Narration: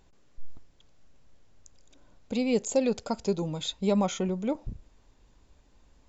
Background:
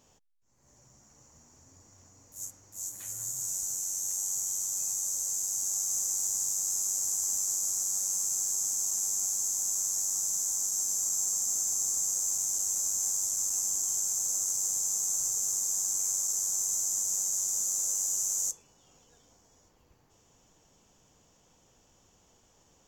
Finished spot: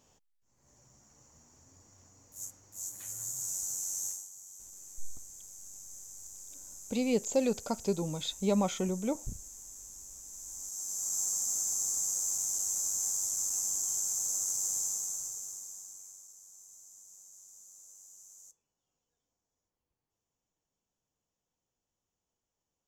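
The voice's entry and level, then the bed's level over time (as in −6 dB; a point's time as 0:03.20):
4.60 s, −3.0 dB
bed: 0:04.07 −2.5 dB
0:04.30 −18 dB
0:10.23 −18 dB
0:11.19 −2.5 dB
0:14.82 −2.5 dB
0:16.36 −24.5 dB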